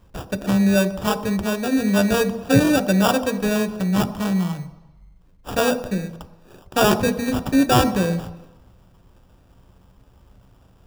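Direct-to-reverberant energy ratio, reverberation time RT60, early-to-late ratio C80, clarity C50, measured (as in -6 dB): 10.5 dB, 1.0 s, 15.5 dB, 14.0 dB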